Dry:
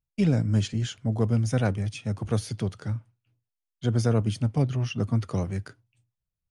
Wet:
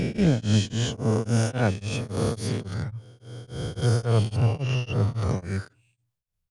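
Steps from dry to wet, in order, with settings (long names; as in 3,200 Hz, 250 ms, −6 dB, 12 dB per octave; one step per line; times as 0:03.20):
peak hold with a rise ahead of every peak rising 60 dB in 1.72 s
0:02.82–0:05.31: graphic EQ with 15 bands 100 Hz +4 dB, 250 Hz −9 dB, 6,300 Hz −4 dB
tremolo along a rectified sine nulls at 3.6 Hz
level +1.5 dB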